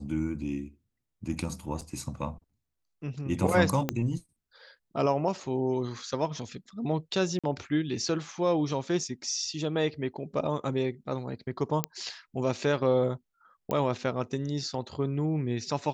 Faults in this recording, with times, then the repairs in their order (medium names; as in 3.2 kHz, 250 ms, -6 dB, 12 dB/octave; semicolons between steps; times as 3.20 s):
1.81–1.82 s: dropout 6.1 ms
3.89 s: pop -12 dBFS
7.39–7.44 s: dropout 46 ms
11.84 s: pop -10 dBFS
13.71 s: pop -17 dBFS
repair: de-click; interpolate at 1.81 s, 6.1 ms; interpolate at 7.39 s, 46 ms